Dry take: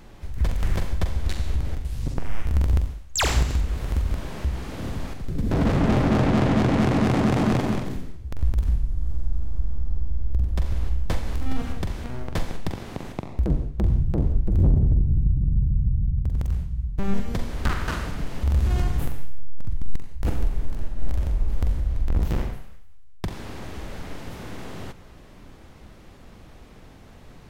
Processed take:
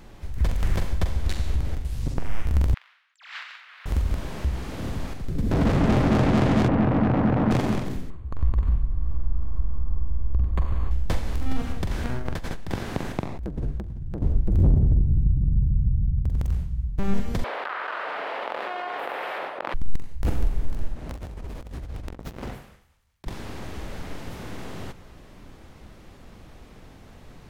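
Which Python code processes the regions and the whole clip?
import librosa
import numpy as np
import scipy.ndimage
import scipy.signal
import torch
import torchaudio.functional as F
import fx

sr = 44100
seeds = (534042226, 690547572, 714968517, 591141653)

y = fx.chain(x, sr, fx.highpass(hz=1400.0, slope=24),
    fx.over_compress(threshold_db=-33.0, ratio=-0.5),
    fx.air_absorb(metres=370.0), at=(2.74, 3.86))
y = fx.chain(y, sr, fx.lowpass(hz=1600.0, slope=12),
    fx.notch(hz=390.0, q=6.9),
    fx.doppler_dist(depth_ms=0.46), at=(6.68, 7.51))
y = fx.chain(y, sr, fx.peak_eq(hz=1100.0, db=12.5, octaves=0.31),
    fx.resample_linear(factor=8), at=(8.1, 10.91))
y = fx.chain(y, sr, fx.peak_eq(hz=1600.0, db=4.5, octaves=0.35),
    fx.over_compress(threshold_db=-28.0, ratio=-1.0), at=(11.91, 14.22))
y = fx.chain(y, sr, fx.highpass(hz=550.0, slope=24),
    fx.air_absorb(metres=450.0),
    fx.env_flatten(amount_pct=100), at=(17.44, 19.74))
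y = fx.chain(y, sr, fx.highpass(hz=150.0, slope=6),
    fx.over_compress(threshold_db=-34.0, ratio=-0.5),
    fx.doppler_dist(depth_ms=0.88), at=(20.96, 23.27))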